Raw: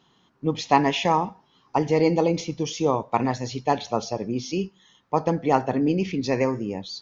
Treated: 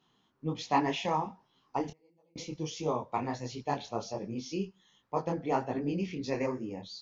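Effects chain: 1.88–2.36 s: inverted gate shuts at -23 dBFS, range -39 dB; detune thickener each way 48 cents; trim -5.5 dB

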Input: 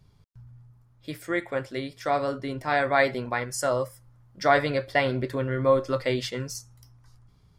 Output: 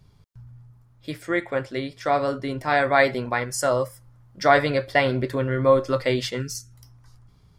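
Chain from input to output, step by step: 1.13–2.25 s: treble shelf 11 kHz -12 dB; 6.41–6.73 s: time-frequency box 450–1300 Hz -28 dB; trim +3.5 dB

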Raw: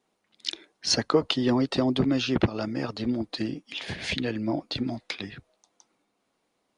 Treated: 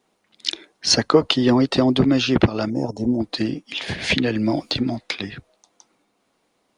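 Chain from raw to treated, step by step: 2.70–3.20 s: time-frequency box 1–5.2 kHz -23 dB; 4.10–4.75 s: three bands compressed up and down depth 100%; trim +7 dB

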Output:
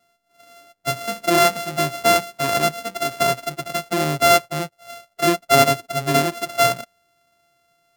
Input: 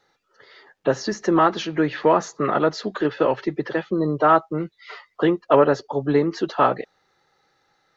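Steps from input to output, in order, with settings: sorted samples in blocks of 64 samples; harmonic-percussive split percussive -13 dB; trim +2 dB

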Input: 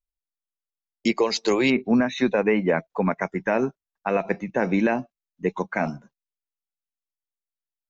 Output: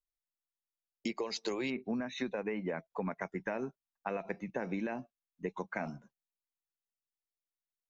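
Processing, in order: compression, threshold -24 dBFS, peak gain reduction 8.5 dB; trim -8.5 dB

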